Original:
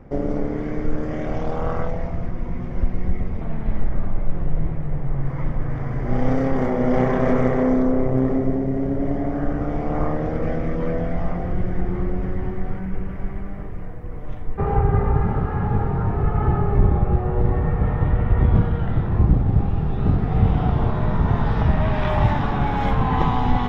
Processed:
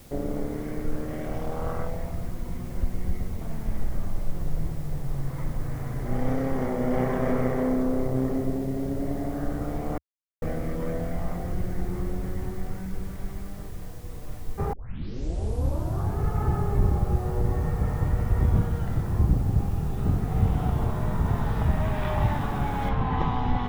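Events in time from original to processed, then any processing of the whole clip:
9.98–10.42 mute
14.73 tape start 1.46 s
22.89 noise floor step -48 dB -68 dB
whole clip: bell 76 Hz +2.5 dB; gain -6.5 dB

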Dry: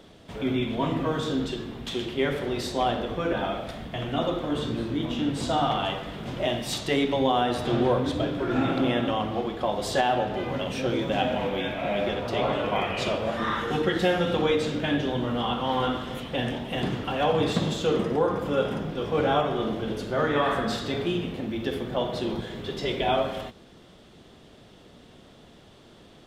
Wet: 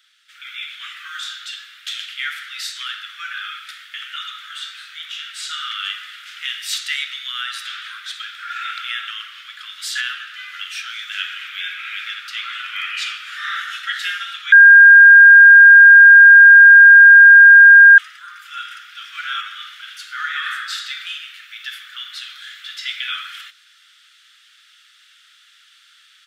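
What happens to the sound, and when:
14.52–17.98 bleep 1610 Hz -7 dBFS
whole clip: steep high-pass 1300 Hz 96 dB/oct; AGC gain up to 8 dB

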